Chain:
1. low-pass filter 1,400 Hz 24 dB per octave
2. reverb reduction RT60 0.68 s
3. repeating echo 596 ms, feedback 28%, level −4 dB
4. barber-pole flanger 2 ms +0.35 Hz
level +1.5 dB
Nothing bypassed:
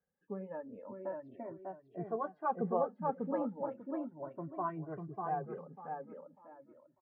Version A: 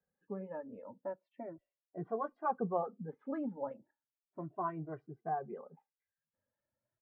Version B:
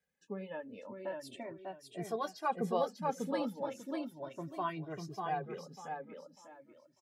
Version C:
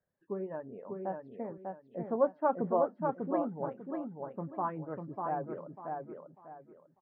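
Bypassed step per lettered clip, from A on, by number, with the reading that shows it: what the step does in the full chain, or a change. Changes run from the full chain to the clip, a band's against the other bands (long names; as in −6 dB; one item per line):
3, change in integrated loudness −1.5 LU
1, 2 kHz band +6.5 dB
4, change in integrated loudness +4.0 LU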